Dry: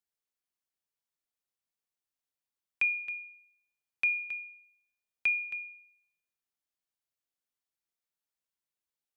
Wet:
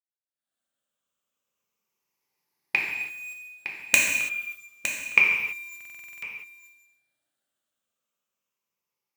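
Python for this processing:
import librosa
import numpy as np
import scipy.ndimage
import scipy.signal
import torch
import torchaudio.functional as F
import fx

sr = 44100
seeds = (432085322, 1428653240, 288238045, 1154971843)

p1 = fx.spec_ripple(x, sr, per_octave=0.8, drift_hz=-0.29, depth_db=10)
p2 = fx.doppler_pass(p1, sr, speed_mps=8, closest_m=1.5, pass_at_s=4.2)
p3 = fx.recorder_agc(p2, sr, target_db=-34.5, rise_db_per_s=56.0, max_gain_db=30)
p4 = scipy.signal.sosfilt(scipy.signal.butter(2, 84.0, 'highpass', fs=sr, output='sos'), p3)
p5 = fx.high_shelf(p4, sr, hz=3100.0, db=-5.5)
p6 = fx.hum_notches(p5, sr, base_hz=50, count=4)
p7 = fx.quant_dither(p6, sr, seeds[0], bits=8, dither='none')
p8 = p6 + (p7 * 10.0 ** (-3.0 / 20.0))
p9 = (np.mod(10.0 ** (1.5 / 20.0) * p8 + 1.0, 2.0) - 1.0) / 10.0 ** (1.5 / 20.0)
p10 = p9 + fx.echo_single(p9, sr, ms=911, db=-10.0, dry=0)
p11 = fx.rev_gated(p10, sr, seeds[1], gate_ms=360, shape='falling', drr_db=-2.5)
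y = fx.buffer_glitch(p11, sr, at_s=(5.76,), block=2048, repeats=9)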